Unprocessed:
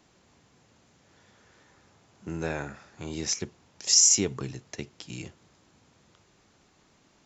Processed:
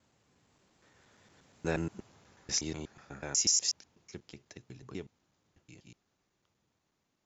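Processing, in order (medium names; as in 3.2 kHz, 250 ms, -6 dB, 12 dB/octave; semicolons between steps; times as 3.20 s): slices played last to first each 120 ms, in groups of 7; Doppler pass-by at 1.93 s, 9 m/s, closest 6.1 m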